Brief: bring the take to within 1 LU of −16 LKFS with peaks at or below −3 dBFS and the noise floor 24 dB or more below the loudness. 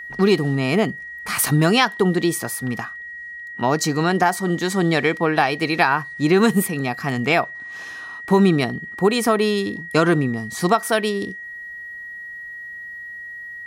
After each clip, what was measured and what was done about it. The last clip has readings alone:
interfering tone 1,900 Hz; level of the tone −32 dBFS; integrated loudness −20.0 LKFS; sample peak −2.5 dBFS; target loudness −16.0 LKFS
→ notch filter 1,900 Hz, Q 30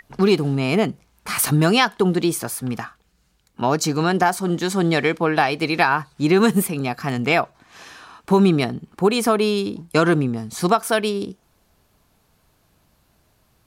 interfering tone none found; integrated loudness −20.0 LKFS; sample peak −3.0 dBFS; target loudness −16.0 LKFS
→ level +4 dB
brickwall limiter −3 dBFS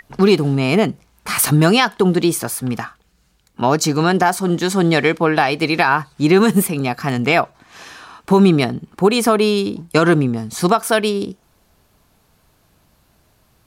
integrated loudness −16.5 LKFS; sample peak −3.0 dBFS; background noise floor −59 dBFS

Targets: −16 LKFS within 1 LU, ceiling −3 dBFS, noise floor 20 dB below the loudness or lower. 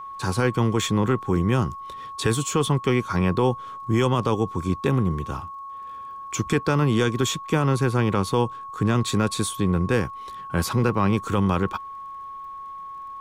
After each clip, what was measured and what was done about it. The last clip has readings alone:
crackle rate 22 per second; interfering tone 1,100 Hz; level of the tone −34 dBFS; integrated loudness −23.5 LKFS; sample peak −9.5 dBFS; target loudness −16.0 LKFS
→ click removal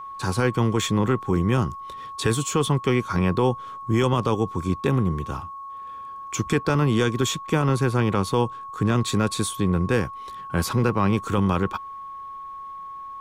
crackle rate 0 per second; interfering tone 1,100 Hz; level of the tone −34 dBFS
→ notch filter 1,100 Hz, Q 30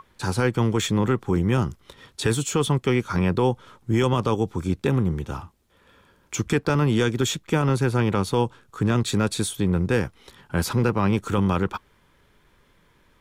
interfering tone none found; integrated loudness −23.5 LKFS; sample peak −9.5 dBFS; target loudness −16.0 LKFS
→ level +7.5 dB
brickwall limiter −3 dBFS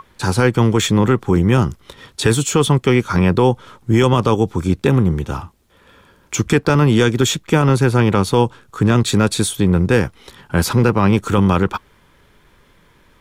integrated loudness −16.0 LKFS; sample peak −3.0 dBFS; background noise floor −53 dBFS

